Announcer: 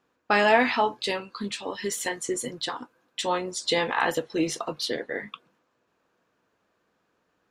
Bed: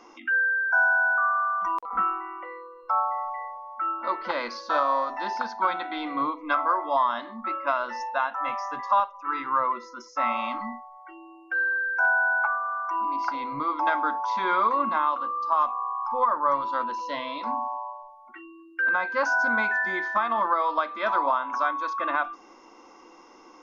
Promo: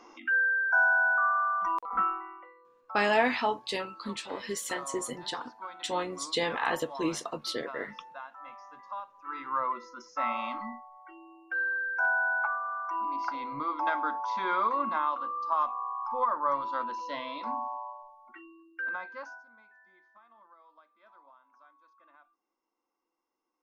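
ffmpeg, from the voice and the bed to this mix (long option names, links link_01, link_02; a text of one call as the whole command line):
ffmpeg -i stem1.wav -i stem2.wav -filter_complex "[0:a]adelay=2650,volume=-5dB[link_01];[1:a]volume=10dB,afade=type=out:start_time=2.01:duration=0.53:silence=0.177828,afade=type=in:start_time=9.01:duration=0.69:silence=0.237137,afade=type=out:start_time=18.35:duration=1.09:silence=0.0334965[link_02];[link_01][link_02]amix=inputs=2:normalize=0" out.wav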